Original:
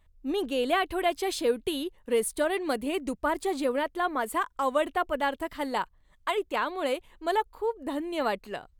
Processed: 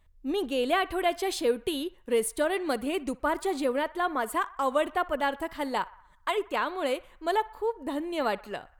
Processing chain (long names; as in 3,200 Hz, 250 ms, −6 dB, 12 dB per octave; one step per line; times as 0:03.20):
feedback echo with a band-pass in the loop 61 ms, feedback 64%, band-pass 1,300 Hz, level −18.5 dB